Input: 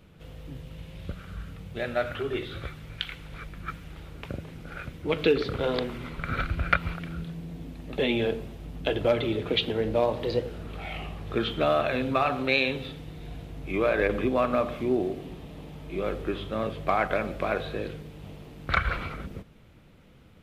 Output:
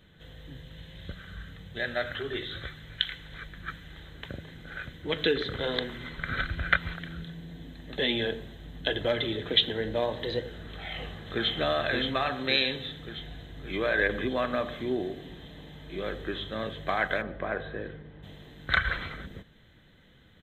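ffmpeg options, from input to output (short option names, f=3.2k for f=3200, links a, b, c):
-filter_complex "[0:a]asplit=2[a][b];[b]afade=t=in:st=10.4:d=0.01,afade=t=out:st=11.52:d=0.01,aecho=0:1:570|1140|1710|2280|2850|3420|3990|4560|5130:0.630957|0.378574|0.227145|0.136287|0.0817721|0.0490632|0.0294379|0.0176628|0.0105977[c];[a][c]amix=inputs=2:normalize=0,asplit=3[d][e][f];[d]afade=t=out:st=17.21:d=0.02[g];[e]lowpass=1.7k,afade=t=in:st=17.21:d=0.02,afade=t=out:st=18.22:d=0.02[h];[f]afade=t=in:st=18.22:d=0.02[i];[g][h][i]amix=inputs=3:normalize=0,superequalizer=11b=3.16:13b=3.16:14b=0.355:16b=0.501,volume=-4.5dB"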